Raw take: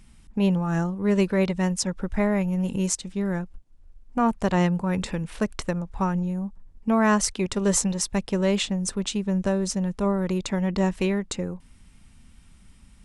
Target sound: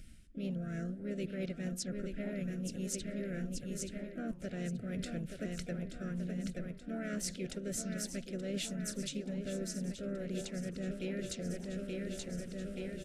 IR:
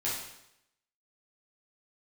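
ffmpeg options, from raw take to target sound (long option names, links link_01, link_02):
-filter_complex "[0:a]aecho=1:1:878|1756|2634|3512|4390|5268|6146:0.335|0.191|0.109|0.062|0.0354|0.0202|0.0115,areverse,acompressor=threshold=-34dB:ratio=6,areverse,asplit=4[link_01][link_02][link_03][link_04];[link_02]asetrate=37084,aresample=44100,atempo=1.18921,volume=-15dB[link_05];[link_03]asetrate=55563,aresample=44100,atempo=0.793701,volume=-15dB[link_06];[link_04]asetrate=58866,aresample=44100,atempo=0.749154,volume=-11dB[link_07];[link_01][link_05][link_06][link_07]amix=inputs=4:normalize=0,asuperstop=centerf=960:order=12:qfactor=1.5,flanger=delay=2.1:depth=8.1:regen=-89:speed=1.7:shape=sinusoidal,volume=1.5dB"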